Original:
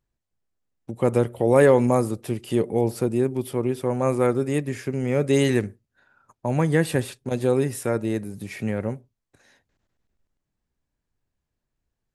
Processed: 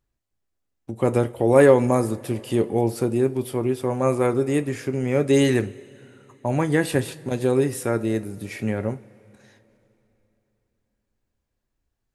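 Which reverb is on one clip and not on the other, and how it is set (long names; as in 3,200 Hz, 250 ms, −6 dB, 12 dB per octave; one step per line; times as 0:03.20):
coupled-rooms reverb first 0.23 s, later 3.4 s, from −22 dB, DRR 9.5 dB
level +1 dB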